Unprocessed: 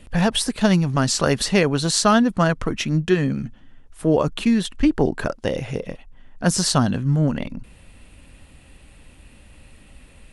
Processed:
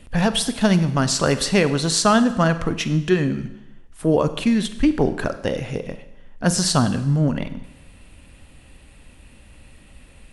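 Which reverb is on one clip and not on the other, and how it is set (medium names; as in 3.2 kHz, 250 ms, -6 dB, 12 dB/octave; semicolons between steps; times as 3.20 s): Schroeder reverb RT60 0.93 s, combs from 33 ms, DRR 11.5 dB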